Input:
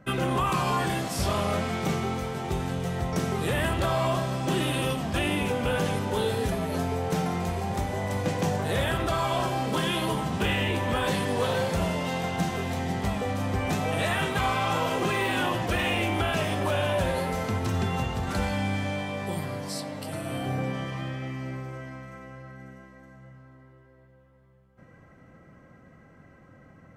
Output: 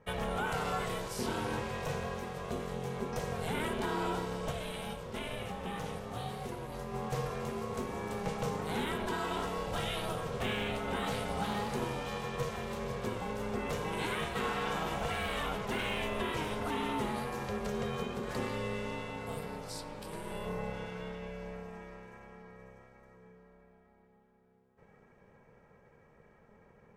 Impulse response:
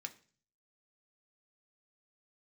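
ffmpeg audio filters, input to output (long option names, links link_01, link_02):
-filter_complex "[0:a]asplit=3[link_01][link_02][link_03];[link_01]afade=type=out:start_time=4.5:duration=0.02[link_04];[link_02]flanger=delay=7.3:depth=9.4:regen=-81:speed=1.4:shape=sinusoidal,afade=type=in:start_time=4.5:duration=0.02,afade=type=out:start_time=6.93:duration=0.02[link_05];[link_03]afade=type=in:start_time=6.93:duration=0.02[link_06];[link_04][link_05][link_06]amix=inputs=3:normalize=0,aeval=exprs='val(0)*sin(2*PI*310*n/s)':channel_layout=same,volume=-5.5dB"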